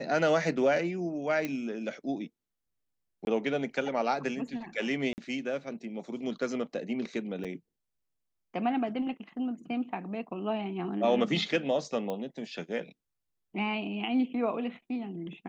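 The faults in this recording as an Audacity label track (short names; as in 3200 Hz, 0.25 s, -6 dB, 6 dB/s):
1.450000	1.450000	pop -19 dBFS
3.250000	3.270000	gap 21 ms
5.130000	5.180000	gap 49 ms
7.440000	7.450000	gap 6.6 ms
12.100000	12.100000	pop -22 dBFS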